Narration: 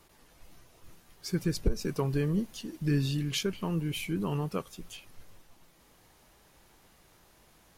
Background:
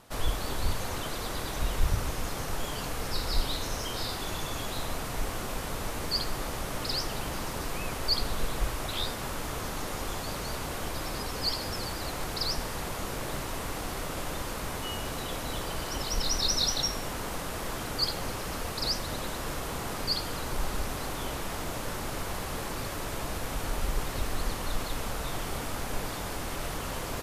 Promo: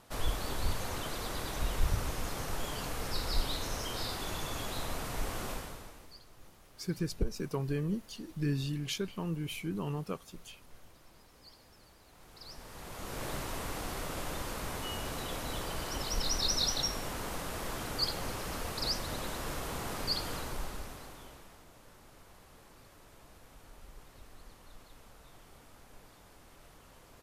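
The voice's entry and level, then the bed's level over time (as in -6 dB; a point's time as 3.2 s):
5.55 s, -4.5 dB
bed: 5.51 s -3.5 dB
6.2 s -27 dB
12.06 s -27 dB
13.24 s -3.5 dB
20.34 s -3.5 dB
21.66 s -22.5 dB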